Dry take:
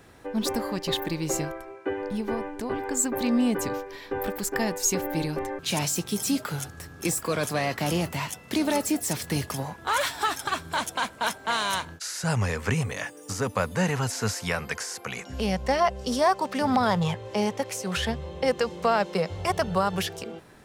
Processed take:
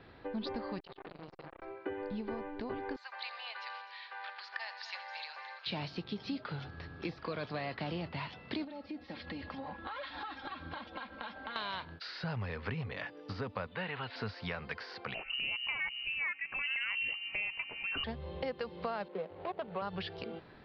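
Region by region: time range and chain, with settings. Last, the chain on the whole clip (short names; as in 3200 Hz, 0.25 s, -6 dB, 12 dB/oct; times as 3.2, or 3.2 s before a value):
0.8–1.62 compressor 10:1, threshold -34 dBFS + core saturation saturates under 1500 Hz
2.96–5.67 Bessel high-pass 1300 Hz, order 8 + multi-head echo 84 ms, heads first and third, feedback 64%, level -16 dB
8.64–11.56 comb 3.7 ms, depth 85% + compressor 12:1, threshold -33 dBFS + air absorption 110 m
13.67–14.16 steep low-pass 3700 Hz + tilt +3 dB/oct
15.14–18.04 bell 94 Hz +13 dB 1.1 oct + inverted band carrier 2900 Hz
19.08–19.82 median filter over 25 samples + three-band isolator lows -21 dB, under 220 Hz, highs -12 dB, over 3500 Hz
whole clip: steep low-pass 4700 Hz 72 dB/oct; compressor 3:1, threshold -34 dBFS; gain -3.5 dB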